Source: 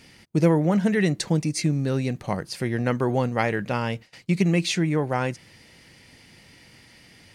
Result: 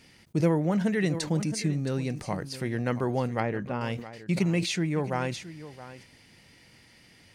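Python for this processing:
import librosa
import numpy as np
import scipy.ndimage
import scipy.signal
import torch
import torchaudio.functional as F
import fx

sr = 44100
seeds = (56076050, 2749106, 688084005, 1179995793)

p1 = fx.lowpass(x, sr, hz=1200.0, slope=6, at=(3.4, 3.81))
p2 = p1 + fx.echo_single(p1, sr, ms=670, db=-15.0, dry=0)
p3 = fx.sustainer(p2, sr, db_per_s=100.0)
y = F.gain(torch.from_numpy(p3), -5.0).numpy()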